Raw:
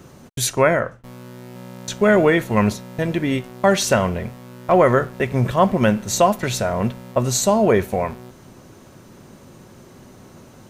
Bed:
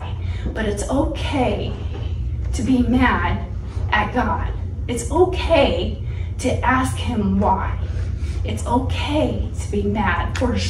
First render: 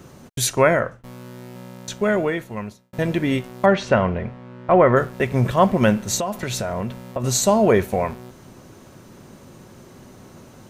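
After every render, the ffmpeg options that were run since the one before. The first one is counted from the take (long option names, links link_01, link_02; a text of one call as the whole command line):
ffmpeg -i in.wav -filter_complex "[0:a]asplit=3[link_01][link_02][link_03];[link_01]afade=type=out:start_time=3.65:duration=0.02[link_04];[link_02]lowpass=2500,afade=type=in:start_time=3.65:duration=0.02,afade=type=out:start_time=4.95:duration=0.02[link_05];[link_03]afade=type=in:start_time=4.95:duration=0.02[link_06];[link_04][link_05][link_06]amix=inputs=3:normalize=0,asettb=1/sr,asplit=3[link_07][link_08][link_09];[link_07]atrim=end=6.164[link_10];[link_08]atrim=start=6.16:end=7.24,asetpts=PTS-STARTPTS,afade=type=in:duration=0.004:curve=qsin,afade=type=out:start_time=1.076:duration=0.004:curve=qsin,acompressor=threshold=-21dB:ratio=6:attack=3.2:release=140:knee=1:detection=peak[link_11];[link_09]atrim=start=7.236[link_12];[link_10][link_11]acrossfade=duration=0.004:curve1=hsin:curve2=qsin[link_13];[link_13][link_12]acrossfade=duration=0.004:curve1=qsin:curve2=hsin,asplit=2[link_14][link_15];[link_14]atrim=end=2.93,asetpts=PTS-STARTPTS,afade=type=out:start_time=1.43:duration=1.5[link_16];[link_15]atrim=start=2.93,asetpts=PTS-STARTPTS,afade=type=in:duration=0.004:curve=hsin[link_17];[link_16][link_17]concat=n=2:v=0:a=1" out.wav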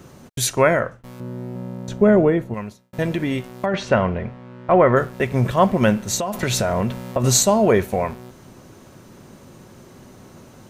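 ffmpeg -i in.wav -filter_complex "[0:a]asettb=1/sr,asplit=3[link_01][link_02][link_03];[link_01]atrim=end=1.204[link_04];[link_02]atrim=start=1.2:end=2.54,asetpts=PTS-STARTPTS,afade=type=in:duration=0.004:curve=qsin,afade=type=out:start_time=1.336:duration=0.004:curve=qsin,tiltshelf=frequency=1100:gain=9[link_05];[link_03]atrim=start=2.536[link_06];[link_04][link_05]acrossfade=duration=0.004:curve1=hsin:curve2=qsin[link_07];[link_07][link_06]acrossfade=duration=0.004:curve1=qsin:curve2=hsin,asettb=1/sr,asplit=3[link_08][link_09][link_10];[link_08]atrim=end=3.074[link_11];[link_09]atrim=start=3.07:end=3.74,asetpts=PTS-STARTPTS,afade=type=in:duration=0.004:curve=qsin,afade=type=out:start_time=0.666:duration=0.004:curve=qsin,acompressor=threshold=-17dB:ratio=6:attack=3.2:release=140:knee=1:detection=peak[link_12];[link_10]atrim=start=3.736[link_13];[link_11][link_12]acrossfade=duration=0.004:curve1=hsin:curve2=qsin[link_14];[link_14][link_13]acrossfade=duration=0.004:curve1=qsin:curve2=hsin,asettb=1/sr,asplit=3[link_15][link_16][link_17];[link_15]atrim=end=6.334[link_18];[link_16]atrim=start=6.33:end=7.43,asetpts=PTS-STARTPTS,afade=type=in:duration=0.004:curve=qsin,afade=type=out:start_time=1.096:duration=0.004:curve=qsin,acontrast=28[link_19];[link_17]atrim=start=7.426[link_20];[link_18][link_19]acrossfade=duration=0.004:curve1=hsin:curve2=qsin[link_21];[link_21][link_20]acrossfade=duration=0.004:curve1=qsin:curve2=hsin" out.wav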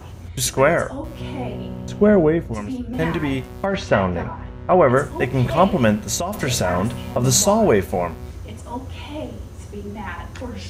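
ffmpeg -i in.wav -i bed.wav -filter_complex "[1:a]volume=-11.5dB[link_01];[0:a][link_01]amix=inputs=2:normalize=0" out.wav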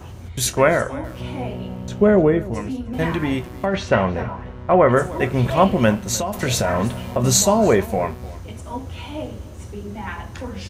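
ffmpeg -i in.wav -filter_complex "[0:a]asplit=2[link_01][link_02];[link_02]adelay=26,volume=-13.5dB[link_03];[link_01][link_03]amix=inputs=2:normalize=0,asplit=2[link_04][link_05];[link_05]adelay=303.2,volume=-19dB,highshelf=frequency=4000:gain=-6.82[link_06];[link_04][link_06]amix=inputs=2:normalize=0" out.wav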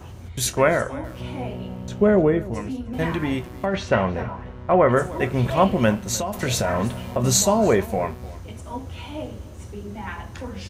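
ffmpeg -i in.wav -af "volume=-2.5dB" out.wav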